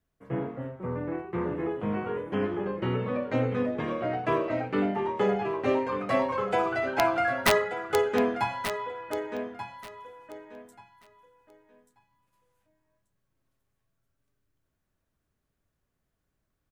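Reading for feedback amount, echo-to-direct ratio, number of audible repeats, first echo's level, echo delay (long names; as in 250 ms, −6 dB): 20%, −10.0 dB, 2, −10.0 dB, 1,184 ms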